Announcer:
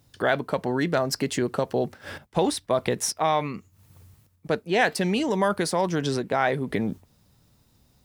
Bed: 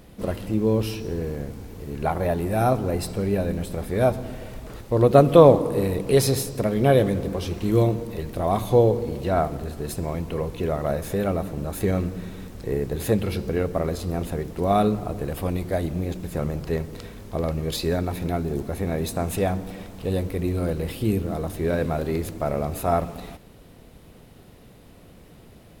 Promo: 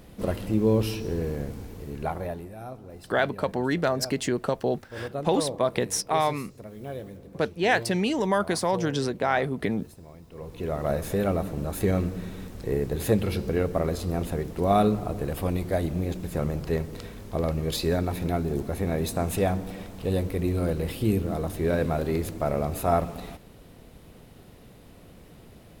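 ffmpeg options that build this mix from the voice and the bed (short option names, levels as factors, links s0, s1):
-filter_complex "[0:a]adelay=2900,volume=0.891[s0];[1:a]volume=7.5,afade=t=out:st=1.6:d=0.95:silence=0.11885,afade=t=in:st=10.31:d=0.63:silence=0.125893[s1];[s0][s1]amix=inputs=2:normalize=0"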